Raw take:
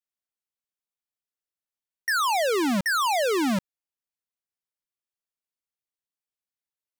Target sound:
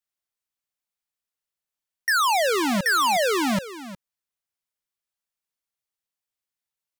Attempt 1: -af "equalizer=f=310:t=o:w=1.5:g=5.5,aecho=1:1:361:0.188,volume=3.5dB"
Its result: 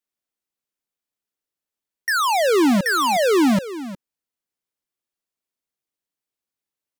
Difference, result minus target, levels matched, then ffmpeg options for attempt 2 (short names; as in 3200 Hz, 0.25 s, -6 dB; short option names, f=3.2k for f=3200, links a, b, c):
250 Hz band +5.0 dB
-af "equalizer=f=310:t=o:w=1.5:g=-4.5,aecho=1:1:361:0.188,volume=3.5dB"